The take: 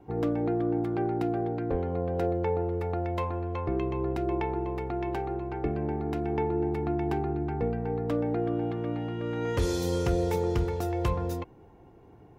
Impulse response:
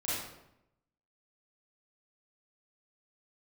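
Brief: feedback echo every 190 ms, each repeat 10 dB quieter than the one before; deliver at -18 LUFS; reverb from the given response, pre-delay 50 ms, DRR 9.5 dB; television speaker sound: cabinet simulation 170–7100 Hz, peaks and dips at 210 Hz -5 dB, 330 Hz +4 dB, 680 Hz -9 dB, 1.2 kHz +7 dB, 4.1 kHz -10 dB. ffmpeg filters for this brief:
-filter_complex "[0:a]aecho=1:1:190|380|570|760:0.316|0.101|0.0324|0.0104,asplit=2[s0][s1];[1:a]atrim=start_sample=2205,adelay=50[s2];[s1][s2]afir=irnorm=-1:irlink=0,volume=0.178[s3];[s0][s3]amix=inputs=2:normalize=0,highpass=f=170:w=0.5412,highpass=f=170:w=1.3066,equalizer=f=210:t=q:w=4:g=-5,equalizer=f=330:t=q:w=4:g=4,equalizer=f=680:t=q:w=4:g=-9,equalizer=f=1200:t=q:w=4:g=7,equalizer=f=4100:t=q:w=4:g=-10,lowpass=f=7100:w=0.5412,lowpass=f=7100:w=1.3066,volume=4.47"

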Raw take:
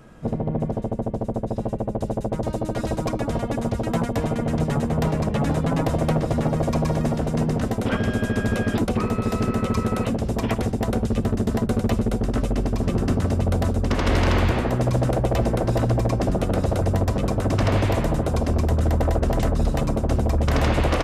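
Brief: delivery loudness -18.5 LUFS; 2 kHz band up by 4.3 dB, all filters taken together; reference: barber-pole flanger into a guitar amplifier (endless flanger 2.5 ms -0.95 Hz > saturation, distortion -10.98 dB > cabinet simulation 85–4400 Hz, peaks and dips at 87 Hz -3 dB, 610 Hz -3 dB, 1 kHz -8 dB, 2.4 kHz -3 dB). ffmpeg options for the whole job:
-filter_complex "[0:a]equalizer=f=2000:t=o:g=7,asplit=2[s0][s1];[s1]adelay=2.5,afreqshift=-0.95[s2];[s0][s2]amix=inputs=2:normalize=1,asoftclip=threshold=0.0668,highpass=85,equalizer=f=87:t=q:w=4:g=-3,equalizer=f=610:t=q:w=4:g=-3,equalizer=f=1000:t=q:w=4:g=-8,equalizer=f=2400:t=q:w=4:g=-3,lowpass=f=4400:w=0.5412,lowpass=f=4400:w=1.3066,volume=4.47"

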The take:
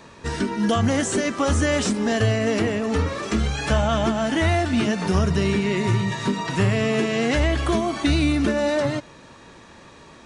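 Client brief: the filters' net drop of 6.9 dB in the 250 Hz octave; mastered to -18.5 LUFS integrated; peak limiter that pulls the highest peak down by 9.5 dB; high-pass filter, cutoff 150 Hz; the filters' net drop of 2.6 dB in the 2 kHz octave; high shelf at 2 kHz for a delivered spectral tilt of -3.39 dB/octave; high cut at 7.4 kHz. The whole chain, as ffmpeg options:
-af "highpass=150,lowpass=7400,equalizer=f=250:t=o:g=-8,highshelf=f=2000:g=9,equalizer=f=2000:t=o:g=-8.5,volume=3.16,alimiter=limit=0.316:level=0:latency=1"

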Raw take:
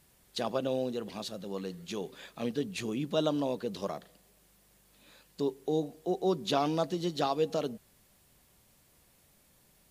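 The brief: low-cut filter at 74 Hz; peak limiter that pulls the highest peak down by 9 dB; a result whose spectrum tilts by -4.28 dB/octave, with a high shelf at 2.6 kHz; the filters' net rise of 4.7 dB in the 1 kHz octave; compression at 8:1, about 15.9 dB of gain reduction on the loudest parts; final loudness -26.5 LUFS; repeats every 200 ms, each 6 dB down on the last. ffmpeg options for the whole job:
-af "highpass=74,equalizer=f=1000:t=o:g=5.5,highshelf=f=2600:g=8.5,acompressor=threshold=0.0126:ratio=8,alimiter=level_in=2.99:limit=0.0631:level=0:latency=1,volume=0.335,aecho=1:1:200|400|600|800|1000|1200:0.501|0.251|0.125|0.0626|0.0313|0.0157,volume=8.91"

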